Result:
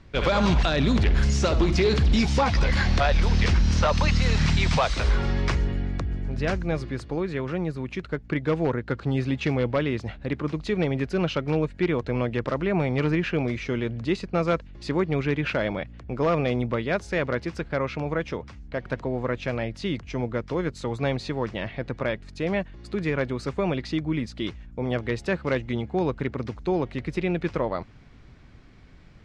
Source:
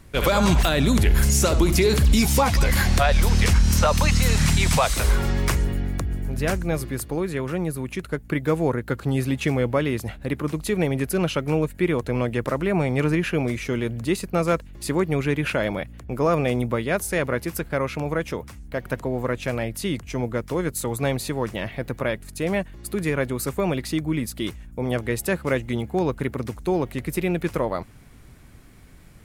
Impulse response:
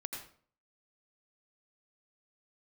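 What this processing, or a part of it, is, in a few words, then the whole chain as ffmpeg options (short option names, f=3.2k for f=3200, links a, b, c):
synthesiser wavefolder: -af "aeval=exprs='0.251*(abs(mod(val(0)/0.251+3,4)-2)-1)':c=same,lowpass=f=5.3k:w=0.5412,lowpass=f=5.3k:w=1.3066,volume=-2dB"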